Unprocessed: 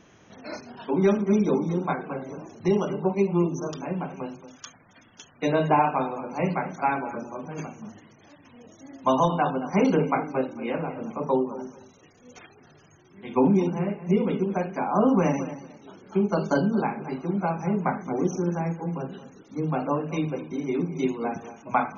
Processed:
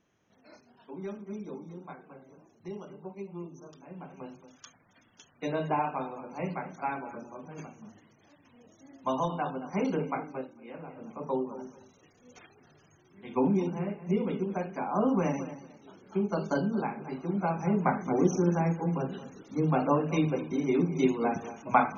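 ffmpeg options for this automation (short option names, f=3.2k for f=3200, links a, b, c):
-af "volume=10.5dB,afade=t=in:st=3.86:d=0.43:silence=0.334965,afade=t=out:st=10.24:d=0.37:silence=0.316228,afade=t=in:st=10.61:d=0.93:silence=0.237137,afade=t=in:st=17.08:d=1.1:silence=0.473151"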